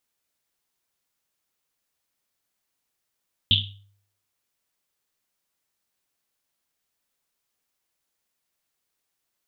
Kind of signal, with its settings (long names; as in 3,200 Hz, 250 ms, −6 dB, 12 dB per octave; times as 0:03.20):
drum after Risset, pitch 100 Hz, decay 0.63 s, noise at 3,300 Hz, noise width 820 Hz, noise 65%